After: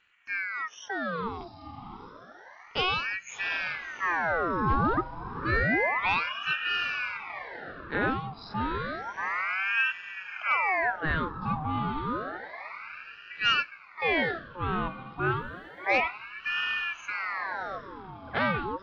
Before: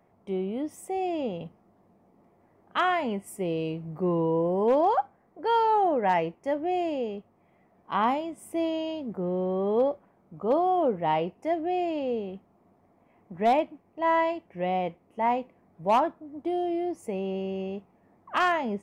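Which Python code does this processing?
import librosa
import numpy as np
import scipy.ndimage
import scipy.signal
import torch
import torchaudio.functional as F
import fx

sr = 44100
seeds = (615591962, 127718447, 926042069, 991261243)

y = fx.freq_compress(x, sr, knee_hz=3500.0, ratio=4.0)
y = fx.quant_dither(y, sr, seeds[0], bits=12, dither='none', at=(15.24, 15.97))
y = fx.echo_diffused(y, sr, ms=725, feedback_pct=46, wet_db=-11.0)
y = fx.ring_lfo(y, sr, carrier_hz=1300.0, swing_pct=65, hz=0.3)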